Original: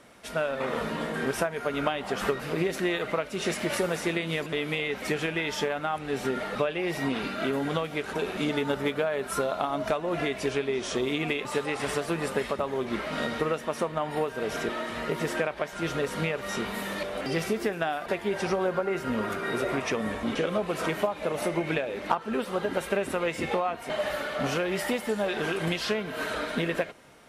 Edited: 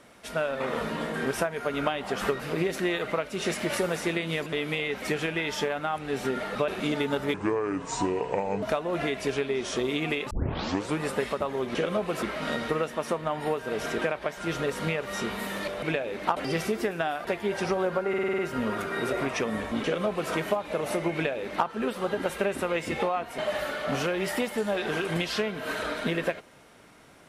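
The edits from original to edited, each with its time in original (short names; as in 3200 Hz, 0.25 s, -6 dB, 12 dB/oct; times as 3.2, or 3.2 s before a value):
6.68–8.25 cut
8.91–9.81 speed 70%
11.49 tape start 0.69 s
14.72–15.37 cut
18.9 stutter 0.05 s, 7 plays
20.35–20.83 copy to 12.93
21.65–22.19 copy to 17.18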